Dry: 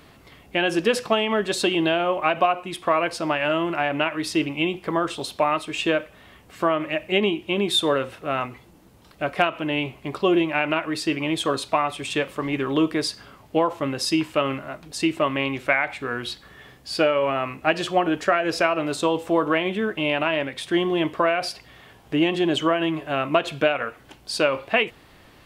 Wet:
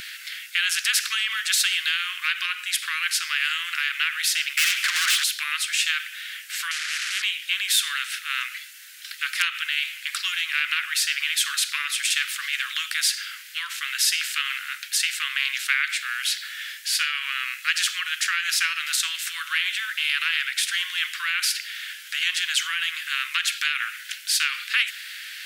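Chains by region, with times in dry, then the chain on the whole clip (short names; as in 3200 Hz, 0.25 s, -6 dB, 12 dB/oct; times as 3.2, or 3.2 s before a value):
4.57–5.24 overdrive pedal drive 30 dB, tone 1600 Hz, clips at -8.5 dBFS + frequency shift -78 Hz
6.71–7.22 delta modulation 64 kbps, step -23.5 dBFS + band-pass 570 Hz, Q 6.5 + spectral compressor 4:1
whole clip: steep high-pass 1500 Hz 72 dB/oct; spectral compressor 2:1; gain +2 dB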